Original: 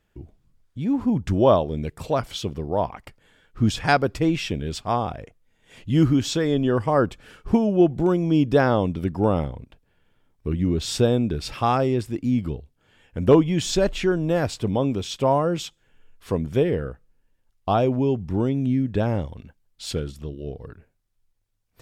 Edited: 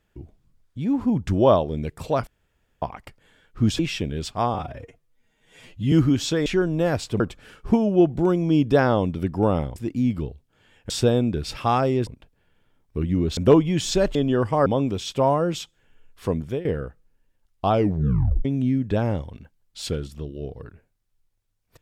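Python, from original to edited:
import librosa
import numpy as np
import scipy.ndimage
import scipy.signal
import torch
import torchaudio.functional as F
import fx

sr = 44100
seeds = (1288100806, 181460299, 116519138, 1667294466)

y = fx.edit(x, sr, fx.room_tone_fill(start_s=2.27, length_s=0.55),
    fx.cut(start_s=3.79, length_s=0.5),
    fx.stretch_span(start_s=5.04, length_s=0.92, factor=1.5),
    fx.swap(start_s=6.5, length_s=0.51, other_s=13.96, other_length_s=0.74),
    fx.swap(start_s=9.57, length_s=1.3, other_s=12.04, other_length_s=1.14),
    fx.fade_out_to(start_s=16.4, length_s=0.29, floor_db=-16.0),
    fx.tape_stop(start_s=17.75, length_s=0.74), tone=tone)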